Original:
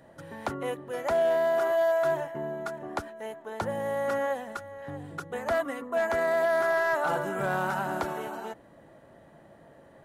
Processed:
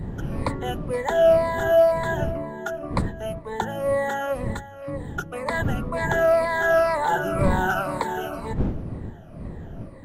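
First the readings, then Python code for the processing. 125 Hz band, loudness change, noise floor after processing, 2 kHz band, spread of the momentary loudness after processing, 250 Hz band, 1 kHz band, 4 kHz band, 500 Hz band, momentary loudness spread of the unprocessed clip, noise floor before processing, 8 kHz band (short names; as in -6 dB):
+14.5 dB, +5.0 dB, -41 dBFS, +5.0 dB, 16 LU, +8.5 dB, +5.5 dB, +6.5 dB, +5.0 dB, 15 LU, -55 dBFS, +5.5 dB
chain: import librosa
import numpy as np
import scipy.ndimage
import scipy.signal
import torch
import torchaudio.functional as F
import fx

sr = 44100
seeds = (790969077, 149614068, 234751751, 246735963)

y = fx.spec_ripple(x, sr, per_octave=0.98, drift_hz=-2.0, depth_db=17)
y = fx.dmg_wind(y, sr, seeds[0], corner_hz=180.0, level_db=-33.0)
y = y * librosa.db_to_amplitude(2.0)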